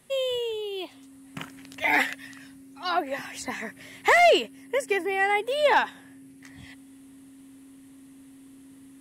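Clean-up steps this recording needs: clip repair -12.5 dBFS; notch 270 Hz, Q 30

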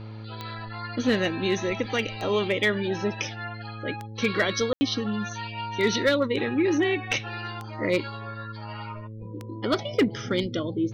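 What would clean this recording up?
clip repair -14 dBFS; de-click; de-hum 109.1 Hz, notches 5; room tone fill 4.73–4.81

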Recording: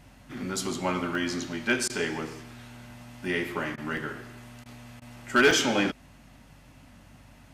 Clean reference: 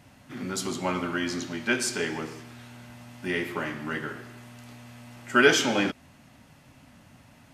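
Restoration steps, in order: clip repair -14 dBFS; de-hum 48.1 Hz, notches 4; interpolate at 1.15/3.97/5.51, 1.4 ms; interpolate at 1.88/3.76/4.64/5, 16 ms

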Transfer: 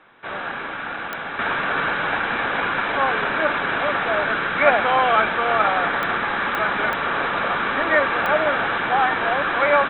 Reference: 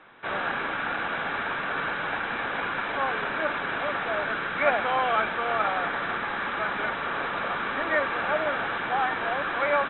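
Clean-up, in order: de-click; gain 0 dB, from 1.39 s -7 dB

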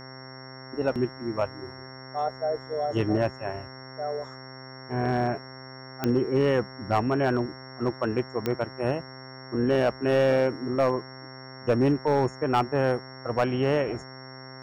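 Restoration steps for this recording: clip repair -15.5 dBFS; de-click; de-hum 131 Hz, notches 16; notch 5500 Hz, Q 30

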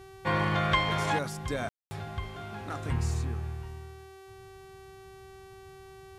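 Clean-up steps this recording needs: de-hum 384.9 Hz, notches 35; room tone fill 1.69–1.91; expander -42 dBFS, range -21 dB

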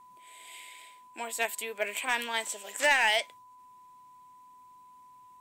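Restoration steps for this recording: clip repair -17 dBFS; notch 1000 Hz, Q 30

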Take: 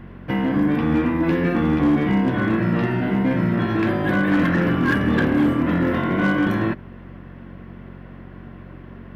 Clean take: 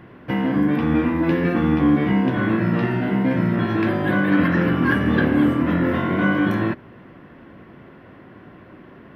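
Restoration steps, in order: clip repair -12.5 dBFS; de-hum 45.8 Hz, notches 5

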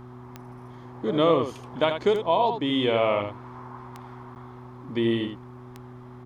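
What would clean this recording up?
de-click; de-hum 123.8 Hz, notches 3; interpolate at 4.35, 9.5 ms; inverse comb 78 ms -7.5 dB

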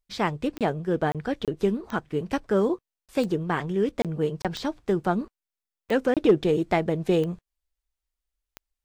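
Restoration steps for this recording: clip repair -10 dBFS; de-click; interpolate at 0.58/1.12/1.45/3.06/4.02/4.42/6.14, 27 ms

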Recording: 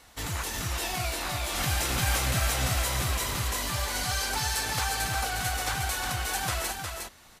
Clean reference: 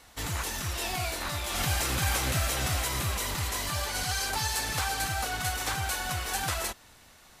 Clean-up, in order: inverse comb 0.359 s -5 dB

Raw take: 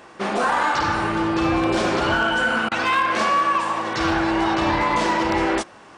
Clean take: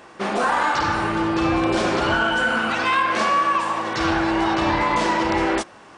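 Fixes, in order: clip repair -12.5 dBFS; interpolate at 2.69, 24 ms

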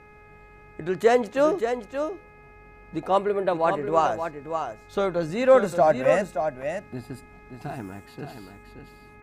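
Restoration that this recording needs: de-hum 419.4 Hz, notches 6; inverse comb 0.576 s -7.5 dB

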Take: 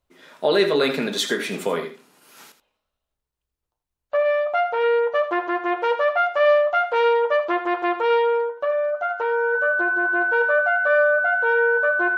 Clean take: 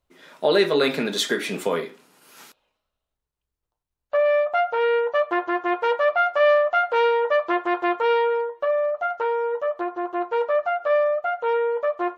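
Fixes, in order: notch 1500 Hz, Q 30; inverse comb 81 ms -11.5 dB

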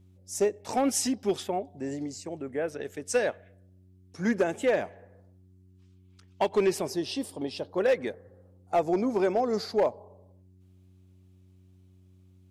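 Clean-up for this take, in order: clip repair -17.5 dBFS; de-hum 92.7 Hz, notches 4

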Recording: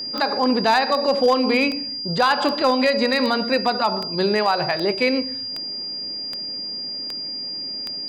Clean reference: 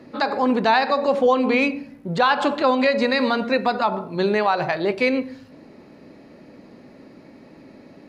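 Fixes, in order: clip repair -10 dBFS; de-click; notch 4800 Hz, Q 30

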